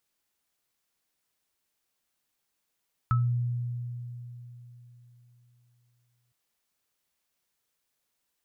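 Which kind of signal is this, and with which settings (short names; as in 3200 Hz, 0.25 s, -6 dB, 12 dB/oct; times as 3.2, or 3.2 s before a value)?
sine partials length 3.21 s, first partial 121 Hz, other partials 1300 Hz, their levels -3 dB, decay 3.68 s, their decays 0.22 s, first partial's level -20.5 dB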